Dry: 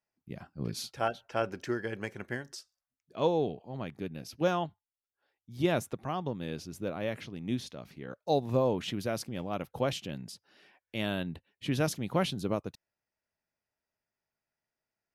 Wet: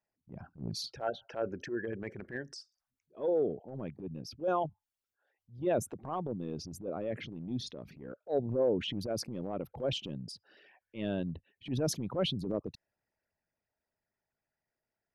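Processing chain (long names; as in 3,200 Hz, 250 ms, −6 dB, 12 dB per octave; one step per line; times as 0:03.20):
spectral envelope exaggerated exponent 2
transient designer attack −11 dB, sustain +2 dB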